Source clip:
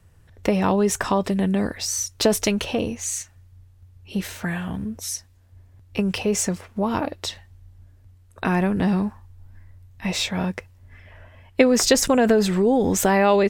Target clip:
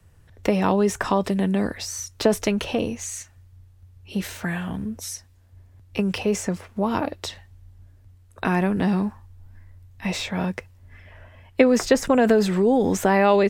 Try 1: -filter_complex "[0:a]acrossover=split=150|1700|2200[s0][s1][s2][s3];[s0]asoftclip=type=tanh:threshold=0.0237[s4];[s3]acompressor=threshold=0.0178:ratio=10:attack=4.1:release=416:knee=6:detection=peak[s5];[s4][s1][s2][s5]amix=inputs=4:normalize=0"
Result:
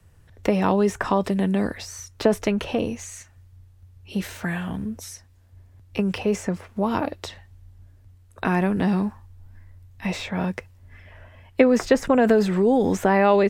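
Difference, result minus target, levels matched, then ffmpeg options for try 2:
compression: peak gain reduction +6.5 dB
-filter_complex "[0:a]acrossover=split=150|1700|2200[s0][s1][s2][s3];[s0]asoftclip=type=tanh:threshold=0.0237[s4];[s3]acompressor=threshold=0.0422:ratio=10:attack=4.1:release=416:knee=6:detection=peak[s5];[s4][s1][s2][s5]amix=inputs=4:normalize=0"

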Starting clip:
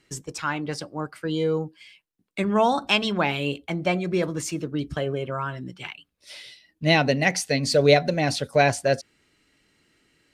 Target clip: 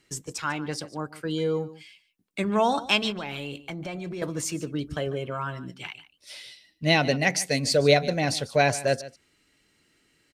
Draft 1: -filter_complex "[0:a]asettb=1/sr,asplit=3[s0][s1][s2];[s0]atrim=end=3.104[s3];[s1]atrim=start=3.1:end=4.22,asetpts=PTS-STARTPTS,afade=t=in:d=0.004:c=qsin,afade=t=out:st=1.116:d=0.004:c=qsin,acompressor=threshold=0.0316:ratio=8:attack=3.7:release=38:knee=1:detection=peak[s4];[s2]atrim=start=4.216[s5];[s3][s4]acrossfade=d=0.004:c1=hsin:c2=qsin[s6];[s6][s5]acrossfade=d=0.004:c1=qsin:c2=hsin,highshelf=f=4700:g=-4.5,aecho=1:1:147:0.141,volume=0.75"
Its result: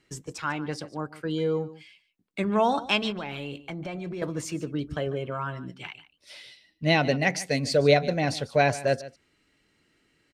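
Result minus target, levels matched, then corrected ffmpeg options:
8 kHz band -5.5 dB
-filter_complex "[0:a]asettb=1/sr,asplit=3[s0][s1][s2];[s0]atrim=end=3.104[s3];[s1]atrim=start=3.1:end=4.22,asetpts=PTS-STARTPTS,afade=t=in:d=0.004:c=qsin,afade=t=out:st=1.116:d=0.004:c=qsin,acompressor=threshold=0.0316:ratio=8:attack=3.7:release=38:knee=1:detection=peak[s4];[s2]atrim=start=4.216[s5];[s3][s4]acrossfade=d=0.004:c1=hsin:c2=qsin[s6];[s6][s5]acrossfade=d=0.004:c1=qsin:c2=hsin,highshelf=f=4700:g=5,aecho=1:1:147:0.141,volume=0.75"

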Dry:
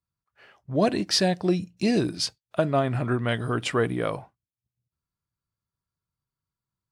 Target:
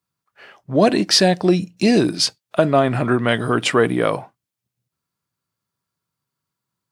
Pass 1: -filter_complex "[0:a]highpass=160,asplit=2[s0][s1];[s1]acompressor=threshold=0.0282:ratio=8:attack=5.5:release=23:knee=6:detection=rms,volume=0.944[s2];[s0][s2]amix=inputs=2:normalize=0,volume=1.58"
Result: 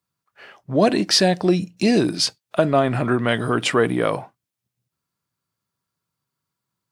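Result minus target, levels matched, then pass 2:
compression: peak gain reduction +8 dB
-filter_complex "[0:a]highpass=160,asplit=2[s0][s1];[s1]acompressor=threshold=0.0794:ratio=8:attack=5.5:release=23:knee=6:detection=rms,volume=0.944[s2];[s0][s2]amix=inputs=2:normalize=0,volume=1.58"

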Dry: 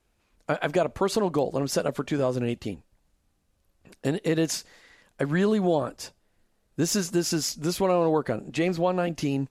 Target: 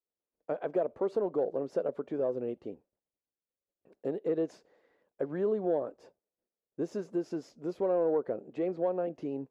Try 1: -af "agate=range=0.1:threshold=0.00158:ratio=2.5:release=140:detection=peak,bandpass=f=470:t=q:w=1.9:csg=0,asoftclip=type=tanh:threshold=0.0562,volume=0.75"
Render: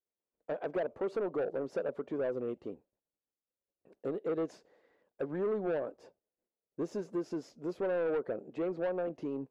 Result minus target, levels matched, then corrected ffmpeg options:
saturation: distortion +17 dB
-af "agate=range=0.1:threshold=0.00158:ratio=2.5:release=140:detection=peak,bandpass=f=470:t=q:w=1.9:csg=0,asoftclip=type=tanh:threshold=0.211,volume=0.75"

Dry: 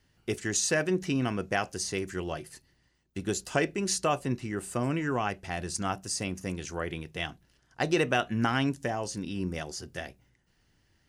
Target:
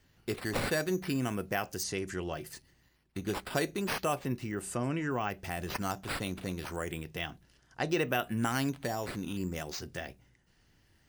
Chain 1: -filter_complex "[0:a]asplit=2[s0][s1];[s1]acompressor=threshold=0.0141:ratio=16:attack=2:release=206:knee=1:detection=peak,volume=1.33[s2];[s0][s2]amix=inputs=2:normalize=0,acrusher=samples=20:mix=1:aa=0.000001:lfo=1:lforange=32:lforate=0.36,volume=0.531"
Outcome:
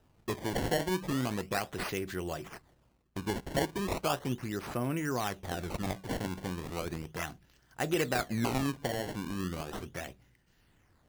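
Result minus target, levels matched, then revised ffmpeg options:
decimation with a swept rate: distortion +8 dB
-filter_complex "[0:a]asplit=2[s0][s1];[s1]acompressor=threshold=0.0141:ratio=16:attack=2:release=206:knee=1:detection=peak,volume=1.33[s2];[s0][s2]amix=inputs=2:normalize=0,acrusher=samples=4:mix=1:aa=0.000001:lfo=1:lforange=6.4:lforate=0.36,volume=0.531"

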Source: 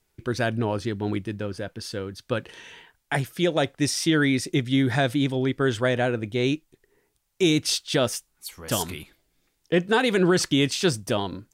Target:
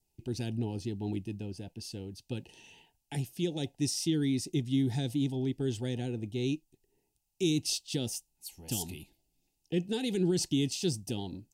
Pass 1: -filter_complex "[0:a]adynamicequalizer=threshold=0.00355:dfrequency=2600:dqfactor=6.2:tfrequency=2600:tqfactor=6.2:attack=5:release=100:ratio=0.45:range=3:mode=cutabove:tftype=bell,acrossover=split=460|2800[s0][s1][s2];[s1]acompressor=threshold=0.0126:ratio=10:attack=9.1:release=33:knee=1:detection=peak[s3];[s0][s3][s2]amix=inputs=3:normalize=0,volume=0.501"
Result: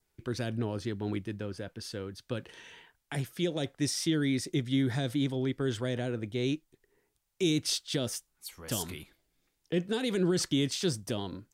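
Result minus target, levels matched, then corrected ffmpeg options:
2 kHz band +6.0 dB
-filter_complex "[0:a]adynamicequalizer=threshold=0.00355:dfrequency=2600:dqfactor=6.2:tfrequency=2600:tqfactor=6.2:attack=5:release=100:ratio=0.45:range=3:mode=cutabove:tftype=bell,acrossover=split=460|2800[s0][s1][s2];[s1]acompressor=threshold=0.0126:ratio=10:attack=9.1:release=33:knee=1:detection=peak,asuperstop=centerf=1500:order=20:qfactor=0.98[s3];[s0][s3][s2]amix=inputs=3:normalize=0,volume=0.501"

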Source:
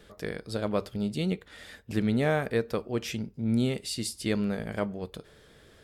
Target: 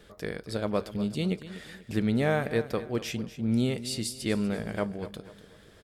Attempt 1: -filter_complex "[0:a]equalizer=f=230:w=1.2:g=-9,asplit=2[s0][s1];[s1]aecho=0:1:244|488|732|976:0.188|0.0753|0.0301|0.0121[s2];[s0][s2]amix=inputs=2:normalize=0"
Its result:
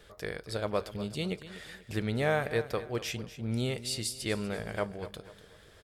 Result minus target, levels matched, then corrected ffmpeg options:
250 Hz band -4.0 dB
-filter_complex "[0:a]asplit=2[s0][s1];[s1]aecho=0:1:244|488|732|976:0.188|0.0753|0.0301|0.0121[s2];[s0][s2]amix=inputs=2:normalize=0"

